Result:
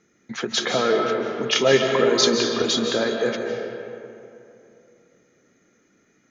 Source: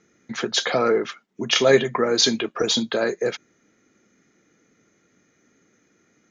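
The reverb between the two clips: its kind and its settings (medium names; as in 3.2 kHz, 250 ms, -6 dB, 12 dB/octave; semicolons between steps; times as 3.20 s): algorithmic reverb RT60 2.8 s, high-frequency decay 0.5×, pre-delay 115 ms, DRR 2 dB; trim -1.5 dB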